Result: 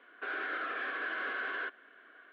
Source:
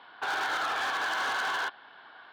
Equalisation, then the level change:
high-pass filter 160 Hz 24 dB per octave
low-pass filter 2,300 Hz 24 dB per octave
phaser with its sweep stopped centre 360 Hz, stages 4
0.0 dB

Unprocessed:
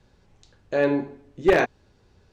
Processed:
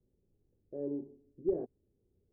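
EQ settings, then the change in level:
transistor ladder low-pass 480 Hz, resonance 40%
−9.0 dB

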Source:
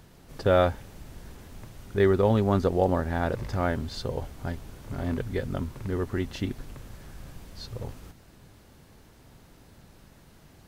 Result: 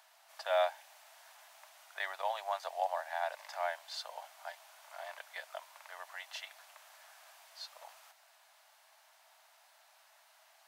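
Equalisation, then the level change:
Chebyshev high-pass filter 630 Hz, order 6
dynamic equaliser 1,300 Hz, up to −8 dB, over −52 dBFS, Q 4.5
−3.0 dB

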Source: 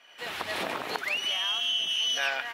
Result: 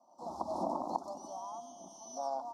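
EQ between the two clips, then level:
Chebyshev band-stop filter 1,000–5,500 Hz, order 3
head-to-tape spacing loss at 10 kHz 23 dB
phaser with its sweep stopped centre 440 Hz, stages 6
+4.0 dB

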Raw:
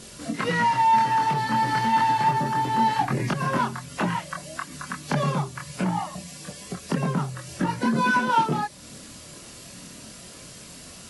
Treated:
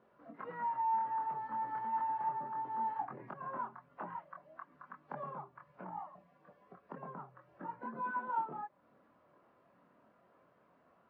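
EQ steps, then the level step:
low-pass filter 1,100 Hz 24 dB per octave
first difference
+4.5 dB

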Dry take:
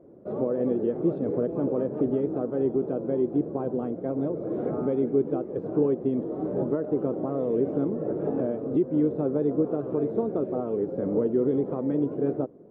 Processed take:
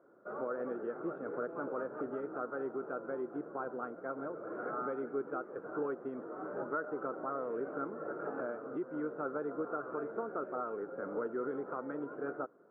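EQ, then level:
resonant band-pass 1,400 Hz, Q 8.9
high-frequency loss of the air 420 metres
+17.0 dB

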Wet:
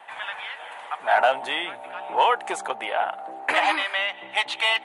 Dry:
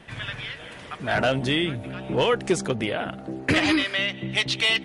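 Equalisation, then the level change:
high-pass with resonance 830 Hz, resonance Q 4.8
parametric band 5,300 Hz −13.5 dB 0.67 octaves
0.0 dB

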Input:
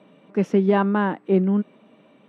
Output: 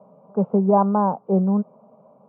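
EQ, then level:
high-pass filter 130 Hz
low-pass filter 1,100 Hz 24 dB per octave
phaser with its sweep stopped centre 760 Hz, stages 4
+7.0 dB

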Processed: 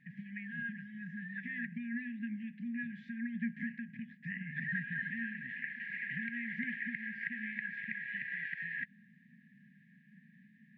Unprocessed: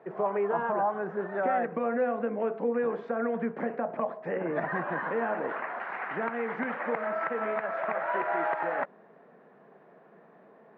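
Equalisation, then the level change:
dynamic equaliser 190 Hz, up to −6 dB, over −44 dBFS, Q 0.97
linear-phase brick-wall band-stop 250–1,600 Hz
high-shelf EQ 3,000 Hz −9.5 dB
+3.5 dB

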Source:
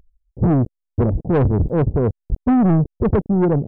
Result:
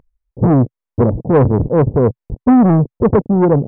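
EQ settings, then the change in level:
octave-band graphic EQ 125/250/500/1,000/2,000 Hz +9/+8/+10/+11/+8 dB
−6.5 dB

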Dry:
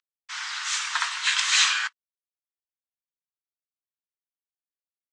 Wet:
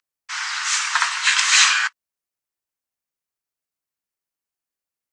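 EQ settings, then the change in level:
parametric band 3,500 Hz −5 dB 0.49 octaves
+7.5 dB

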